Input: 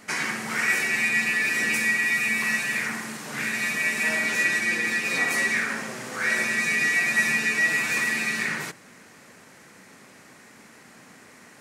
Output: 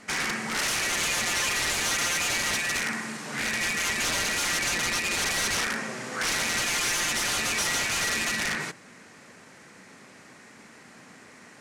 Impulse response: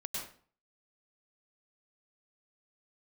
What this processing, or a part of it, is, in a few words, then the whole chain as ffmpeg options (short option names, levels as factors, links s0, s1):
overflowing digital effects unit: -af "aeval=exprs='(mod(10.6*val(0)+1,2)-1)/10.6':c=same,lowpass=9100"